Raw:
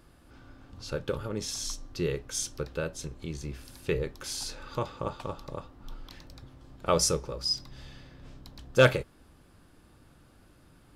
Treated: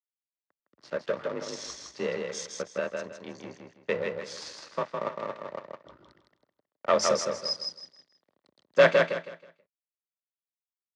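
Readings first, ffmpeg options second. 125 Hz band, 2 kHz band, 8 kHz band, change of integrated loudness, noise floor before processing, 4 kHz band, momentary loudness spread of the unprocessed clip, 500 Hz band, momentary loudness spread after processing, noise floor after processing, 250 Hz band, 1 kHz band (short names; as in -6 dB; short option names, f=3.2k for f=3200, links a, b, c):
-10.5 dB, +3.0 dB, -4.5 dB, +1.5 dB, -59 dBFS, -1.5 dB, 24 LU, +3.5 dB, 20 LU, under -85 dBFS, -3.0 dB, +3.0 dB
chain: -filter_complex "[0:a]afftdn=nr=12:nf=-50,aeval=exprs='sgn(val(0))*max(abs(val(0))-0.00891,0)':c=same,afreqshift=39,asoftclip=type=tanh:threshold=-13.5dB,aeval=exprs='0.211*(cos(1*acos(clip(val(0)/0.211,-1,1)))-cos(1*PI/2))+0.0422*(cos(2*acos(clip(val(0)/0.211,-1,1)))-cos(2*PI/2))':c=same,highpass=230,equalizer=f=580:t=q:w=4:g=6,equalizer=f=1.1k:t=q:w=4:g=5,equalizer=f=1.9k:t=q:w=4:g=8,lowpass=f=6.3k:w=0.5412,lowpass=f=6.3k:w=1.3066,asplit=2[a][b];[b]aecho=0:1:160|320|480|640:0.631|0.177|0.0495|0.0139[c];[a][c]amix=inputs=2:normalize=0"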